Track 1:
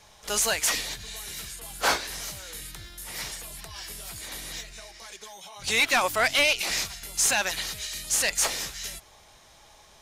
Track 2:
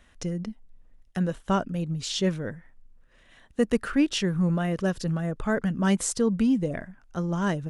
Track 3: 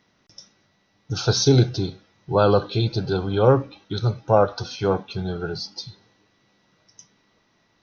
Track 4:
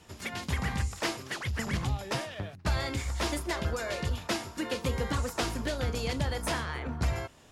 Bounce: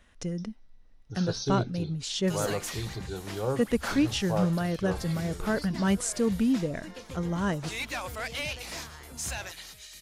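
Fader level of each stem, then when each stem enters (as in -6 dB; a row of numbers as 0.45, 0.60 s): -12.5, -2.5, -14.0, -11.5 dB; 2.00, 0.00, 0.00, 2.25 s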